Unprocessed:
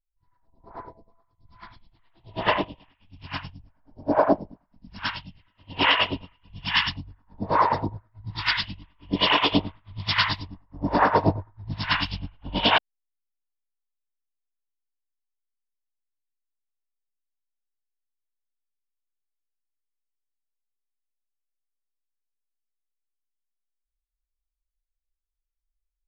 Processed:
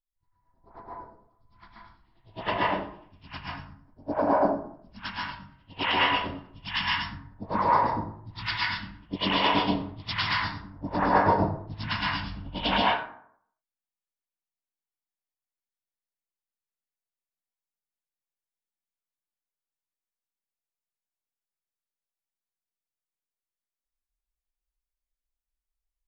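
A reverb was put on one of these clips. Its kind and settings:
dense smooth reverb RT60 0.62 s, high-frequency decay 0.5×, pre-delay 115 ms, DRR −4.5 dB
level −8 dB

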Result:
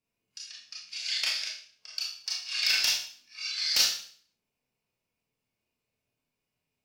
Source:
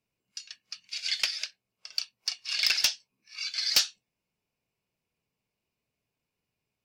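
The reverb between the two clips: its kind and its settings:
four-comb reverb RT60 0.5 s, combs from 25 ms, DRR −4 dB
level −5 dB

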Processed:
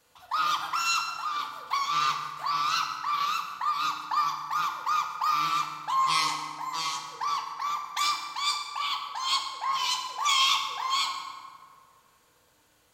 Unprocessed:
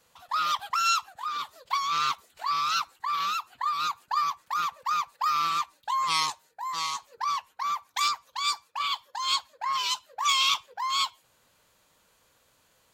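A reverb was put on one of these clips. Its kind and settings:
feedback delay network reverb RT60 1.9 s, low-frequency decay 1.5×, high-frequency decay 0.55×, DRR 1.5 dB
level −1.5 dB

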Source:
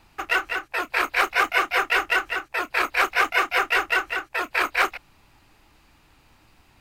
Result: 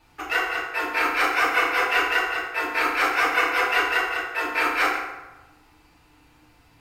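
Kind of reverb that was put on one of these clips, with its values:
feedback delay network reverb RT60 1.1 s, low-frequency decay 0.7×, high-frequency decay 0.6×, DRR −6.5 dB
level −6.5 dB

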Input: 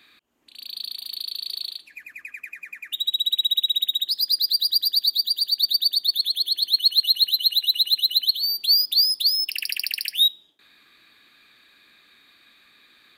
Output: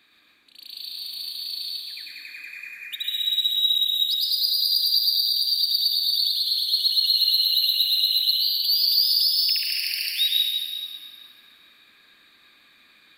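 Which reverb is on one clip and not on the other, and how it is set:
dense smooth reverb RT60 2.2 s, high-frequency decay 0.9×, pre-delay 95 ms, DRR −4 dB
level −5 dB

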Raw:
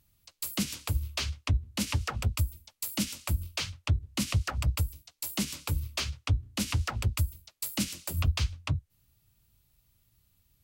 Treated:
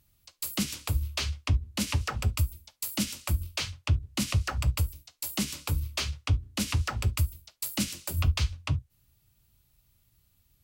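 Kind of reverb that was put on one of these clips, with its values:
reverb whose tail is shaped and stops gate 90 ms falling, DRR 12 dB
level +1 dB

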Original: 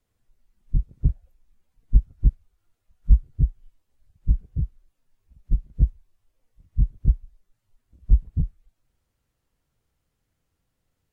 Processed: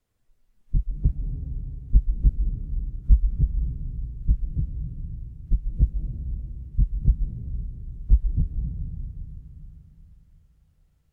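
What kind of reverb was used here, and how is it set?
comb and all-pass reverb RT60 3.6 s, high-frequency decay 0.7×, pre-delay 110 ms, DRR 3.5 dB
level −1 dB

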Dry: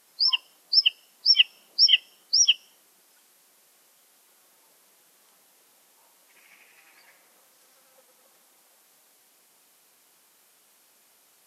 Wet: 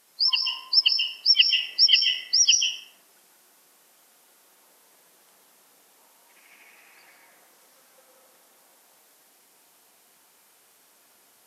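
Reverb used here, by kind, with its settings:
dense smooth reverb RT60 1.5 s, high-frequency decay 0.3×, pre-delay 120 ms, DRR 0 dB

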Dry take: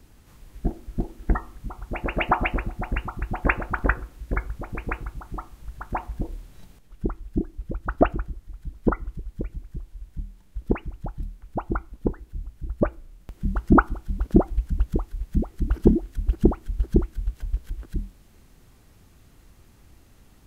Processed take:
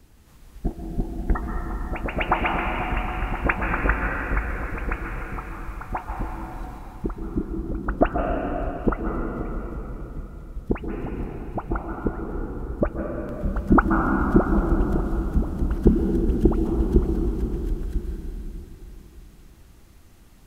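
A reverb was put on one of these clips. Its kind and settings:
dense smooth reverb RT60 3.7 s, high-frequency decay 1×, pre-delay 115 ms, DRR 0 dB
level −1 dB

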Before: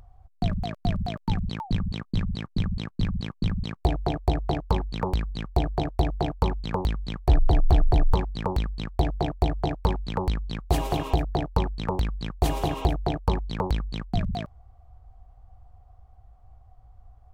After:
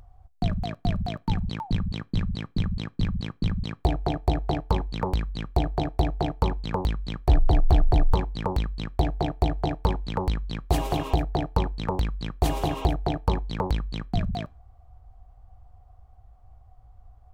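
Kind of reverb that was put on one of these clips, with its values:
feedback delay network reverb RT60 0.35 s, low-frequency decay 0.75×, high-frequency decay 0.75×, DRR 19 dB

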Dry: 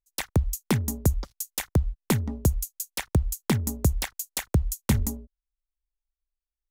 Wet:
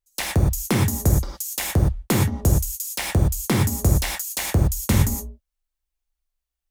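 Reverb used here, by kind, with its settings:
reverb whose tail is shaped and stops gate 140 ms flat, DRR −3 dB
level +1.5 dB

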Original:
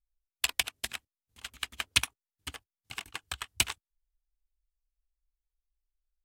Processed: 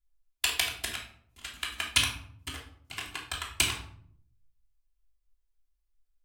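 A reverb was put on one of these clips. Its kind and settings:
rectangular room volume 830 cubic metres, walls furnished, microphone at 3.1 metres
level −1 dB

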